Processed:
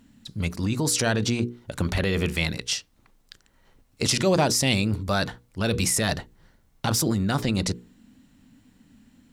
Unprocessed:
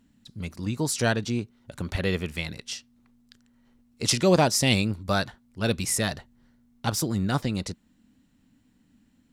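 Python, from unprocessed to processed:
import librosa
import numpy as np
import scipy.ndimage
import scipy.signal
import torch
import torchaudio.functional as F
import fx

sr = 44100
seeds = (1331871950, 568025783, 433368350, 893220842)

p1 = fx.hum_notches(x, sr, base_hz=60, count=8)
p2 = fx.over_compress(p1, sr, threshold_db=-30.0, ratio=-0.5)
p3 = p1 + F.gain(torch.from_numpy(p2), 0.5).numpy()
y = F.gain(torch.from_numpy(p3), -1.0).numpy()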